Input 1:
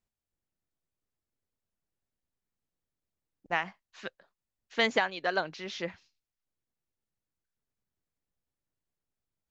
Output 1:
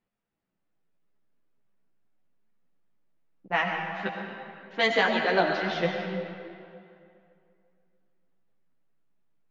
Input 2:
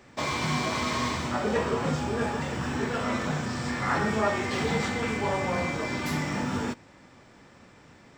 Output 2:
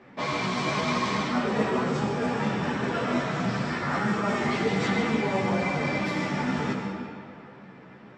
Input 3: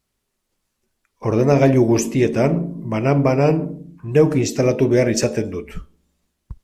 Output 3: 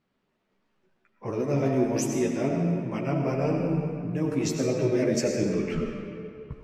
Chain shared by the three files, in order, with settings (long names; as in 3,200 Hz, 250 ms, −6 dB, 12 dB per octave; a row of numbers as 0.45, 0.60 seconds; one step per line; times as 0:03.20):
low-pass that shuts in the quiet parts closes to 2,500 Hz, open at −17.5 dBFS
low shelf with overshoot 100 Hz −11.5 dB, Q 1.5
reversed playback
downward compressor 6 to 1, threshold −27 dBFS
reversed playback
comb and all-pass reverb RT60 2.5 s, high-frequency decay 0.7×, pre-delay 55 ms, DRR 2 dB
multi-voice chorus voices 4, 0.75 Hz, delay 13 ms, depth 3.1 ms
loudness normalisation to −27 LKFS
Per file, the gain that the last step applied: +10.0, +5.5, +5.0 decibels